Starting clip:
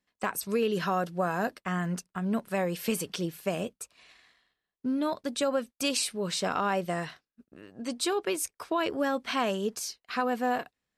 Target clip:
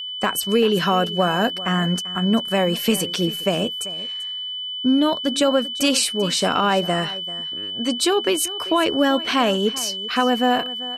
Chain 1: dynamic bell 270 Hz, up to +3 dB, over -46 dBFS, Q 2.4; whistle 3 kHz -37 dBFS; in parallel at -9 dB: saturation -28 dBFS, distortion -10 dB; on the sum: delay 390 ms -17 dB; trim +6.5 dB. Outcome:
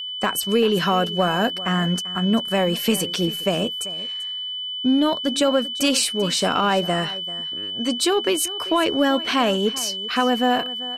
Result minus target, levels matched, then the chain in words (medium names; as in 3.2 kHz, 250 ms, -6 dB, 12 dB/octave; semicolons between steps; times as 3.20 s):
saturation: distortion +11 dB
dynamic bell 270 Hz, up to +3 dB, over -46 dBFS, Q 2.4; whistle 3 kHz -37 dBFS; in parallel at -9 dB: saturation -18.5 dBFS, distortion -21 dB; on the sum: delay 390 ms -17 dB; trim +6.5 dB